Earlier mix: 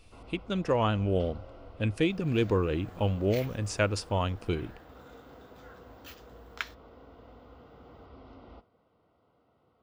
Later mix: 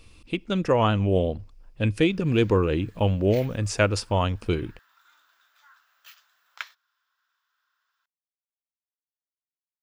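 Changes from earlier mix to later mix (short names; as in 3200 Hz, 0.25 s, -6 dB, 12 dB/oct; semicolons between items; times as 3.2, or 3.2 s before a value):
speech +5.5 dB; first sound: muted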